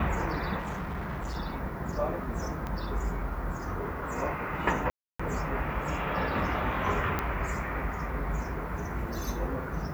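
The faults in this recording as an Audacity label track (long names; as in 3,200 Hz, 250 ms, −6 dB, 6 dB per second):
0.580000	1.370000	clipping −31 dBFS
2.670000	2.670000	click −22 dBFS
4.900000	5.200000	drop-out 295 ms
7.190000	7.190000	click −15 dBFS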